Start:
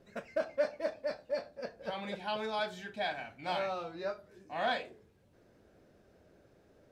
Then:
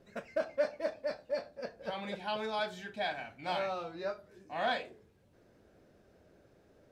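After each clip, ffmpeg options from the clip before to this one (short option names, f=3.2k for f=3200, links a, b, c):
-af anull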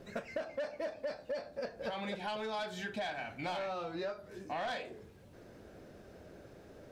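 -af "asoftclip=type=tanh:threshold=-30dB,acompressor=threshold=-46dB:ratio=6,volume=9.5dB"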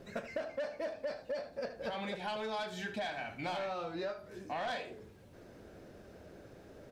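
-af "aecho=1:1:77:0.224"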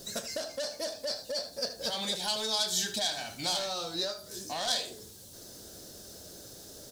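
-af "aexciter=amount=13.4:drive=4.9:freq=3.6k,volume=1dB"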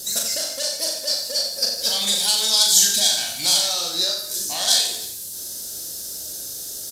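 -af "aecho=1:1:40|90|152.5|230.6|328.3:0.631|0.398|0.251|0.158|0.1,crystalizer=i=5.5:c=0,aresample=32000,aresample=44100"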